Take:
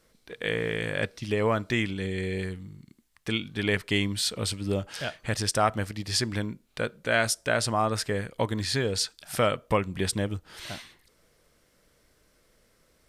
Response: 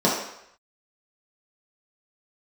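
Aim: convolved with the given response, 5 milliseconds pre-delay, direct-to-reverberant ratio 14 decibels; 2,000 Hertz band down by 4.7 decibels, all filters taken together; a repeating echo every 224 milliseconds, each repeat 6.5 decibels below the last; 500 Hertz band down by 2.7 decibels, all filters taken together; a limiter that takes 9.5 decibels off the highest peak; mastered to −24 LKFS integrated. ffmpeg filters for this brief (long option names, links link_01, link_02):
-filter_complex "[0:a]equalizer=frequency=500:width_type=o:gain=-3,equalizer=frequency=2000:width_type=o:gain=-6,alimiter=limit=-21dB:level=0:latency=1,aecho=1:1:224|448|672|896|1120|1344:0.473|0.222|0.105|0.0491|0.0231|0.0109,asplit=2[link_01][link_02];[1:a]atrim=start_sample=2205,adelay=5[link_03];[link_02][link_03]afir=irnorm=-1:irlink=0,volume=-32dB[link_04];[link_01][link_04]amix=inputs=2:normalize=0,volume=7.5dB"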